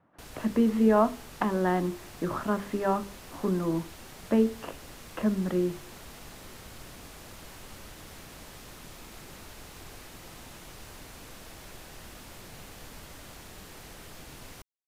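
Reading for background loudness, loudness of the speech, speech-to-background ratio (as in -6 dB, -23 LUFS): -46.0 LUFS, -28.0 LUFS, 18.0 dB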